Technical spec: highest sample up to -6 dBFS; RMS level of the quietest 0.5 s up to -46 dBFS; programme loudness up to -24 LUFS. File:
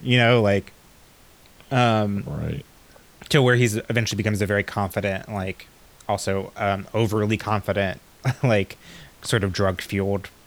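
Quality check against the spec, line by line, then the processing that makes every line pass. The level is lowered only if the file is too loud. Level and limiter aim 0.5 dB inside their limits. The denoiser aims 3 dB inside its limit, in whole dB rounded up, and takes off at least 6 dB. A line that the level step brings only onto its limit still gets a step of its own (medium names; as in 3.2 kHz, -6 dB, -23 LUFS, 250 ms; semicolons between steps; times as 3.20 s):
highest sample -4.5 dBFS: fail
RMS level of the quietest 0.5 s -51 dBFS: pass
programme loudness -23.0 LUFS: fail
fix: trim -1.5 dB; peak limiter -6.5 dBFS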